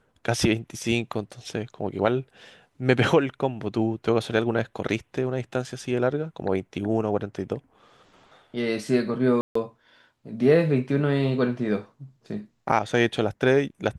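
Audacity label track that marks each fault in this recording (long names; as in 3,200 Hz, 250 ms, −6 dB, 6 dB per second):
9.410000	9.550000	drop-out 144 ms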